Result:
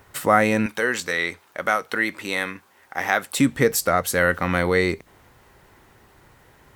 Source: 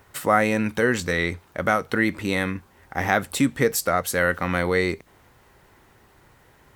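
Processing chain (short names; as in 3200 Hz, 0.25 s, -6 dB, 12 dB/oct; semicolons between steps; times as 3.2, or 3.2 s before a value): 0.66–3.38 HPF 720 Hz 6 dB/oct; gain +2 dB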